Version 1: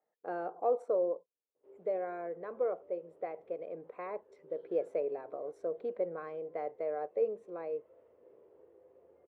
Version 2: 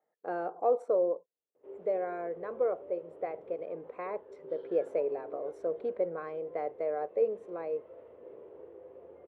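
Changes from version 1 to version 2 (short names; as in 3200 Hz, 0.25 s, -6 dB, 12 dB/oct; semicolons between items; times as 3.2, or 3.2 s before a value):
speech +3.0 dB; background +11.0 dB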